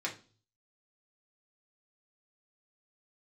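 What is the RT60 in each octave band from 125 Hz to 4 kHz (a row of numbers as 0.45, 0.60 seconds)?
0.80, 0.50, 0.40, 0.35, 0.30, 0.40 seconds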